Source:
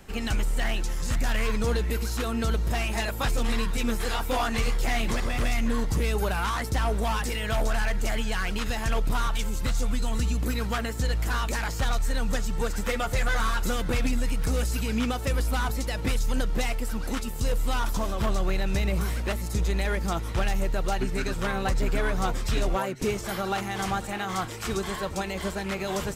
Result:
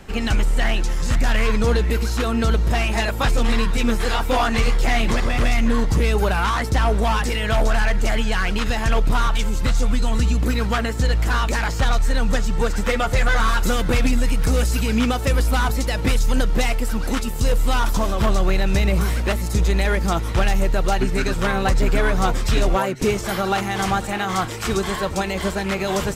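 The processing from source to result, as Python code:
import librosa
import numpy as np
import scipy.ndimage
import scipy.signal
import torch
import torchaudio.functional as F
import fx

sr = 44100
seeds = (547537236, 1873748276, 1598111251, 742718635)

y = fx.high_shelf(x, sr, hz=8700.0, db=fx.steps((0.0, -10.0), (13.47, -3.0)))
y = F.gain(torch.from_numpy(y), 7.5).numpy()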